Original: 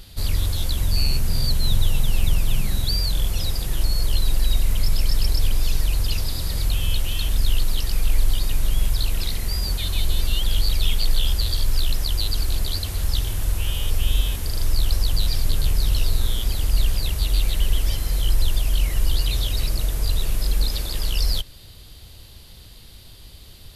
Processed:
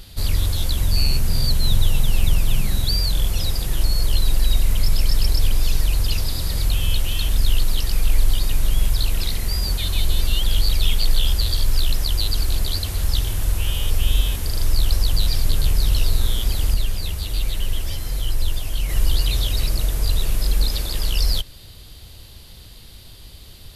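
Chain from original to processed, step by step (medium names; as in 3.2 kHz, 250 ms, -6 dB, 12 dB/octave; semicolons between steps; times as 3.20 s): 16.74–18.89 s: flange 1.4 Hz, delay 7.3 ms, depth 5.7 ms, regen -29%; trim +2 dB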